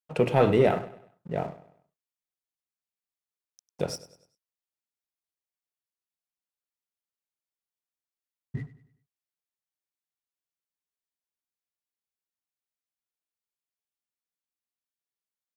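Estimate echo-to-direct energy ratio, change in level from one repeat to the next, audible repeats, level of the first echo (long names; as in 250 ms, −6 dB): −15.5 dB, −7.5 dB, 3, −16.5 dB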